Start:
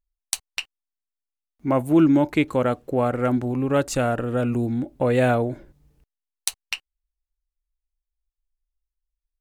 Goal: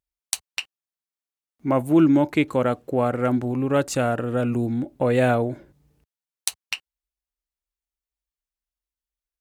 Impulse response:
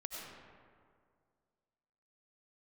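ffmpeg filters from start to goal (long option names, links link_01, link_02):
-af "highpass=74"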